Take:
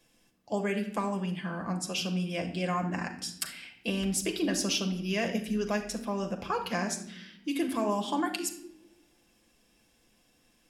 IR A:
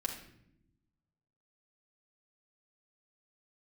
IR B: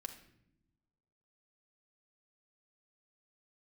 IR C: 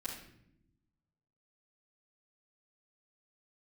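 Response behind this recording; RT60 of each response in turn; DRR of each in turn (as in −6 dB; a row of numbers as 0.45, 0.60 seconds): B; 0.75 s, non-exponential decay, non-exponential decay; −1.5, 3.0, −11.0 decibels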